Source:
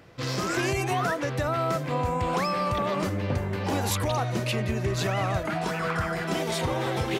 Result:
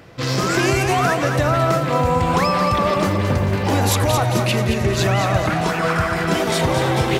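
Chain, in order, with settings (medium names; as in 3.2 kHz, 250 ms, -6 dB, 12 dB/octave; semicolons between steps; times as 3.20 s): 1.96–4.41 s: crackle 90 per s -40 dBFS; two-band feedback delay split 810 Hz, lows 121 ms, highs 221 ms, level -7 dB; trim +8 dB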